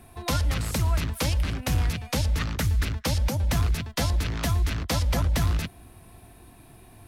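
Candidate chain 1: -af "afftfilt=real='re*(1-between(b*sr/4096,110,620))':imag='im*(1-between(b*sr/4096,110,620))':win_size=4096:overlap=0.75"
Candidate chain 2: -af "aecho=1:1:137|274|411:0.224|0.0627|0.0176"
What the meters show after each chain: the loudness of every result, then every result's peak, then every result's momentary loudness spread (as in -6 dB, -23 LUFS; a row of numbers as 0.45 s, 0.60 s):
-27.5 LUFS, -26.0 LUFS; -15.0 dBFS, -15.5 dBFS; 3 LU, 3 LU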